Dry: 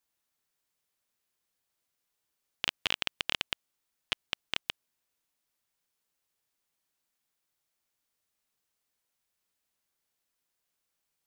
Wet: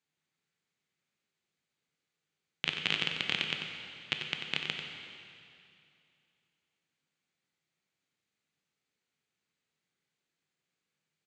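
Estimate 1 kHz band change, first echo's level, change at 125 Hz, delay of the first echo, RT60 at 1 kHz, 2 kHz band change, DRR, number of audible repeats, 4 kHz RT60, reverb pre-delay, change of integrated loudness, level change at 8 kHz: −1.5 dB, −8.0 dB, +7.0 dB, 92 ms, 2.6 s, +2.5 dB, 2.0 dB, 1, 2.4 s, 8 ms, +0.5 dB, −5.0 dB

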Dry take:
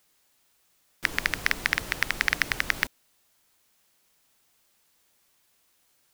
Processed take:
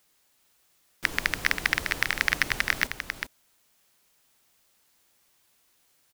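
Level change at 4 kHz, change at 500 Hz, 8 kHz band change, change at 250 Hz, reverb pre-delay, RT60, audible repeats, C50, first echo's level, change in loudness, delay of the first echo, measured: +1.0 dB, +1.0 dB, +1.0 dB, +0.5 dB, no reverb audible, no reverb audible, 1, no reverb audible, −7.0 dB, 0.0 dB, 398 ms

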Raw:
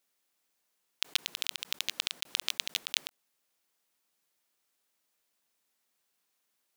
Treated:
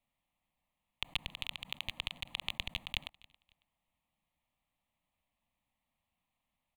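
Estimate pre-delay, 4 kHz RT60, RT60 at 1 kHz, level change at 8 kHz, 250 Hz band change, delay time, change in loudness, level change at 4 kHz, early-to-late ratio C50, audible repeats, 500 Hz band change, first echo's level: no reverb audible, no reverb audible, no reverb audible, −18.0 dB, +3.5 dB, 275 ms, −6.5 dB, −6.5 dB, no reverb audible, 2, −2.5 dB, −23.5 dB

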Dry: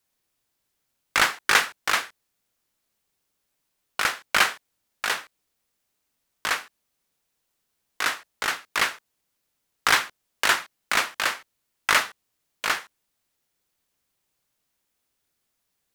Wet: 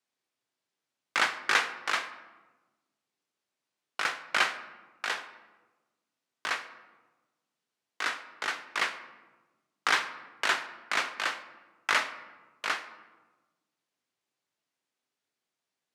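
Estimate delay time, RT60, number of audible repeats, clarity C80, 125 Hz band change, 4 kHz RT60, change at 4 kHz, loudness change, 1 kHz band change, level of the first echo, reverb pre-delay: no echo audible, 1.2 s, no echo audible, 14.0 dB, below −10 dB, 0.70 s, −6.5 dB, −6.0 dB, −5.5 dB, no echo audible, 3 ms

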